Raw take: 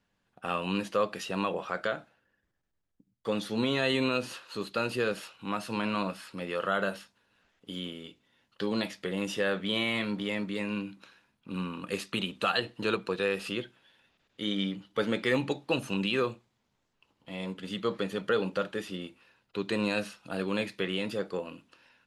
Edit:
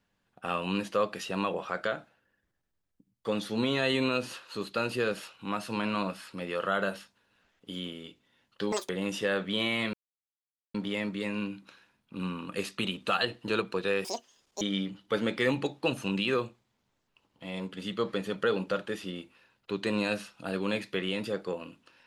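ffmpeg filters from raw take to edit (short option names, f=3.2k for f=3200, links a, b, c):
-filter_complex "[0:a]asplit=6[a][b][c][d][e][f];[a]atrim=end=8.724[g];[b]atrim=start=8.72:end=9.05,asetpts=PTS-STARTPTS,asetrate=83790,aresample=44100,atrim=end_sample=7659,asetpts=PTS-STARTPTS[h];[c]atrim=start=9.046:end=10.09,asetpts=PTS-STARTPTS,afade=t=out:st=1.04:d=0.004:c=hsin,apad=pad_dur=0.81[i];[d]atrim=start=10.09:end=13.394,asetpts=PTS-STARTPTS,afade=t=in:d=0.004:c=hsin[j];[e]atrim=start=13.39:end=14.47,asetpts=PTS-STARTPTS,asetrate=83790,aresample=44100,atrim=end_sample=25067,asetpts=PTS-STARTPTS[k];[f]atrim=start=14.466[l];[g][h]acrossfade=d=0.004:c1=hsin:c2=hsin[m];[i][j]concat=n=2:v=0:a=1[n];[m][n]acrossfade=d=0.004:c1=hsin:c2=hsin[o];[o][k]acrossfade=d=0.004:c1=hsin:c2=hsin[p];[p][l]acrossfade=d=0.004:c1=hsin:c2=hsin"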